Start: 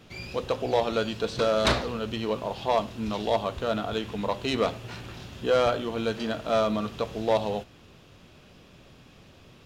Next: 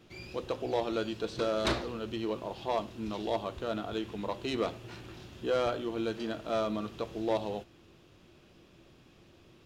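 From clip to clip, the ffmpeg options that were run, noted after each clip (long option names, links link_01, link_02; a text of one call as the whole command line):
ffmpeg -i in.wav -af "equalizer=frequency=340:width_type=o:width=0.25:gain=10.5,volume=-7.5dB" out.wav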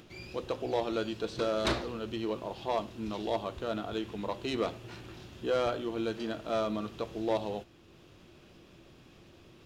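ffmpeg -i in.wav -af "acompressor=mode=upward:threshold=-50dB:ratio=2.5" out.wav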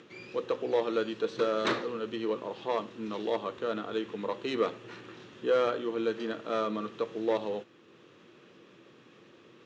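ffmpeg -i in.wav -af "highpass=frequency=140:width=0.5412,highpass=frequency=140:width=1.3066,equalizer=frequency=160:width_type=q:width=4:gain=-4,equalizer=frequency=470:width_type=q:width=4:gain=7,equalizer=frequency=690:width_type=q:width=4:gain=-6,equalizer=frequency=1200:width_type=q:width=4:gain=5,equalizer=frequency=1800:width_type=q:width=4:gain=5,equalizer=frequency=4900:width_type=q:width=4:gain=-6,lowpass=frequency=6600:width=0.5412,lowpass=frequency=6600:width=1.3066" out.wav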